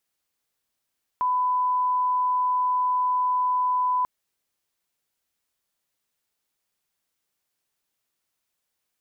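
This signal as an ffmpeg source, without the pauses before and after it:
ffmpeg -f lavfi -i "sine=frequency=1000:duration=2.84:sample_rate=44100,volume=-1.94dB" out.wav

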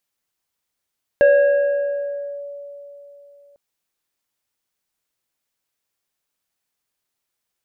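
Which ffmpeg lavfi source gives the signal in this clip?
ffmpeg -f lavfi -i "aevalsrc='0.398*pow(10,-3*t/3.47)*sin(2*PI*570*t+0.53*clip(1-t/1.21,0,1)*sin(2*PI*1.88*570*t))':duration=2.35:sample_rate=44100" out.wav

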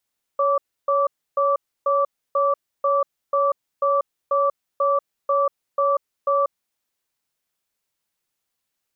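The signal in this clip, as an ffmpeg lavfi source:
ffmpeg -f lavfi -i "aevalsrc='0.112*(sin(2*PI*559*t)+sin(2*PI*1160*t))*clip(min(mod(t,0.49),0.19-mod(t,0.49))/0.005,0,1)':duration=6.15:sample_rate=44100" out.wav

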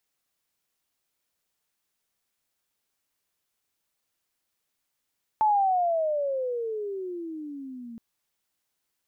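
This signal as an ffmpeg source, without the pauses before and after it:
ffmpeg -f lavfi -i "aevalsrc='pow(10,(-18-20*t/2.57)/20)*sin(2*PI*878*2.57/(-23.5*log(2)/12)*(exp(-23.5*log(2)/12*t/2.57)-1))':duration=2.57:sample_rate=44100" out.wav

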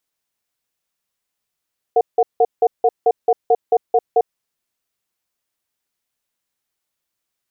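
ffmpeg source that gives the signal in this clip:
ffmpeg -f lavfi -i "aevalsrc='0.237*(sin(2*PI*459*t)+sin(2*PI*727*t))*clip(min(mod(t,0.22),0.05-mod(t,0.22))/0.005,0,1)':duration=2.26:sample_rate=44100" out.wav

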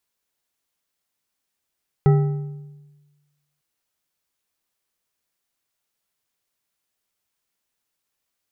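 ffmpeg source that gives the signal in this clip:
ffmpeg -f lavfi -i "aevalsrc='0.316*pow(10,-3*t/1.29)*sin(2*PI*146*t)+0.133*pow(10,-3*t/0.952)*sin(2*PI*402.5*t)+0.0562*pow(10,-3*t/0.778)*sin(2*PI*789*t)+0.0237*pow(10,-3*t/0.669)*sin(2*PI*1304.2*t)+0.01*pow(10,-3*t/0.593)*sin(2*PI*1947.6*t)':duration=1.55:sample_rate=44100" out.wav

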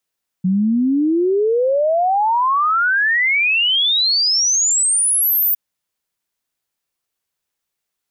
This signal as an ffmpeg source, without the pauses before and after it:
ffmpeg -f lavfi -i "aevalsrc='0.224*clip(min(t,5.11-t)/0.01,0,1)*sin(2*PI*180*5.11/log(15000/180)*(exp(log(15000/180)*t/5.11)-1))':duration=5.11:sample_rate=44100" out.wav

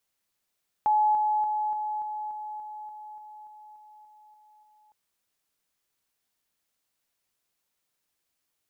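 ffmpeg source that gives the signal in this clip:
ffmpeg -f lavfi -i "aevalsrc='pow(10,(-19-3*floor(t/0.29))/20)*sin(2*PI*850*t)':duration=4.06:sample_rate=44100" out.wav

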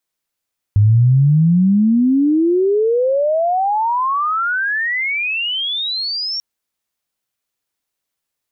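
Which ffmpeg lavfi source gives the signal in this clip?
ffmpeg -f lavfi -i "aevalsrc='pow(10,(-7.5-12*t/5.64)/20)*sin(2*PI*100*5.64/log(5600/100)*(exp(log(5600/100)*t/5.64)-1))':duration=5.64:sample_rate=44100" out.wav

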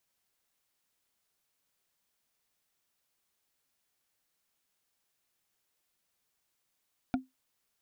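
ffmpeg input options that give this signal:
ffmpeg -f lavfi -i "aevalsrc='0.075*pow(10,-3*t/0.18)*sin(2*PI*260*t)+0.0447*pow(10,-3*t/0.053)*sin(2*PI*716.8*t)+0.0266*pow(10,-3*t/0.024)*sin(2*PI*1405*t)+0.0158*pow(10,-3*t/0.013)*sin(2*PI*2322.6*t)+0.00944*pow(10,-3*t/0.008)*sin(2*PI*3468.4*t)':duration=0.45:sample_rate=44100" out.wav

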